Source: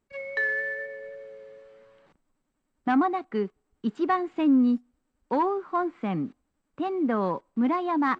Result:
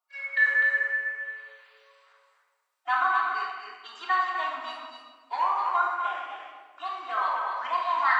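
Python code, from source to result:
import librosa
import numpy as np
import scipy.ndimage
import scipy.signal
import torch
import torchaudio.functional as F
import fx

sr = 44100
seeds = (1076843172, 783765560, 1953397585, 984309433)

p1 = fx.spec_quant(x, sr, step_db=30)
p2 = scipy.signal.sosfilt(scipy.signal.butter(4, 960.0, 'highpass', fs=sr, output='sos'), p1)
p3 = p2 + fx.echo_single(p2, sr, ms=252, db=-5.5, dry=0)
y = fx.room_shoebox(p3, sr, seeds[0], volume_m3=1300.0, walls='mixed', distance_m=3.2)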